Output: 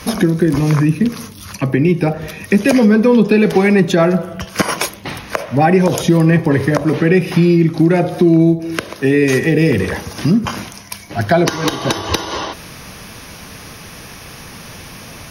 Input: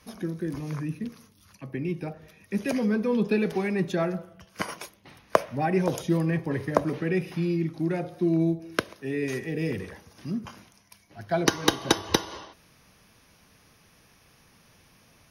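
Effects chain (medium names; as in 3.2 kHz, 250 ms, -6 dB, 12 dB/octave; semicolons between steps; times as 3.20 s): compression 2.5:1, threshold -37 dBFS, peak gain reduction 16 dB; loudness maximiser +25.5 dB; trim -1 dB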